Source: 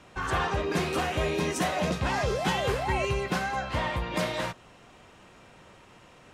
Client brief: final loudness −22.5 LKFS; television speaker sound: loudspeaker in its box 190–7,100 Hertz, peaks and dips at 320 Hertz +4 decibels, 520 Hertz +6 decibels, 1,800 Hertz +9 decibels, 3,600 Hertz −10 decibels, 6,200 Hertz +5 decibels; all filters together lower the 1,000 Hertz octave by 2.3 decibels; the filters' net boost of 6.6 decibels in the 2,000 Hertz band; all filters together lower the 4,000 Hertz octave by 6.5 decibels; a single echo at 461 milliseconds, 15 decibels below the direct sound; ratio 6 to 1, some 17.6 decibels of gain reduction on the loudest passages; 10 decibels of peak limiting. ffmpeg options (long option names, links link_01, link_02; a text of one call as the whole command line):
ffmpeg -i in.wav -af "equalizer=frequency=1000:width_type=o:gain=-5,equalizer=frequency=2000:width_type=o:gain=5,equalizer=frequency=4000:width_type=o:gain=-7,acompressor=threshold=-44dB:ratio=6,alimiter=level_in=17.5dB:limit=-24dB:level=0:latency=1,volume=-17.5dB,highpass=frequency=190:width=0.5412,highpass=frequency=190:width=1.3066,equalizer=frequency=320:width_type=q:width=4:gain=4,equalizer=frequency=520:width_type=q:width=4:gain=6,equalizer=frequency=1800:width_type=q:width=4:gain=9,equalizer=frequency=3600:width_type=q:width=4:gain=-10,equalizer=frequency=6200:width_type=q:width=4:gain=5,lowpass=frequency=7100:width=0.5412,lowpass=frequency=7100:width=1.3066,aecho=1:1:461:0.178,volume=25dB" out.wav